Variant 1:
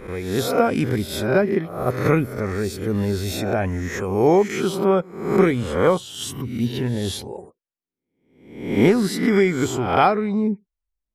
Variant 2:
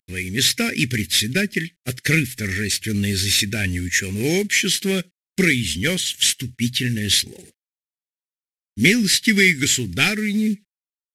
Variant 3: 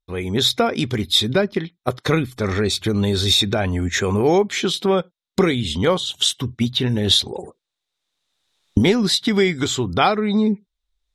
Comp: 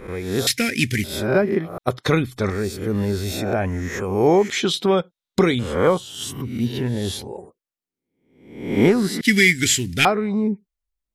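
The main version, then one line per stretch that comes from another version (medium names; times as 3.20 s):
1
0.47–1.04 s: from 2
1.78–2.50 s: from 3
4.50–5.59 s: from 3
9.21–10.05 s: from 2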